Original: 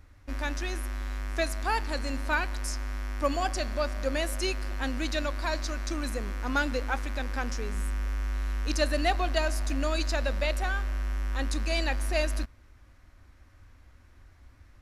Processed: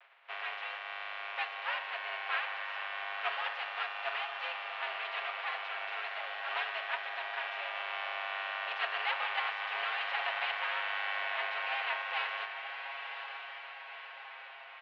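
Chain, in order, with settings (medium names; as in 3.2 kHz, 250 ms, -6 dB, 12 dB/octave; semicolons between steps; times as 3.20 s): spectral contrast reduction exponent 0.31; comb 7.4 ms, depth 85%; echo that smears into a reverb 1024 ms, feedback 57%, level -7.5 dB; mistuned SSB +140 Hz 480–2900 Hz; vibrato 0.32 Hz 20 cents; trim -6.5 dB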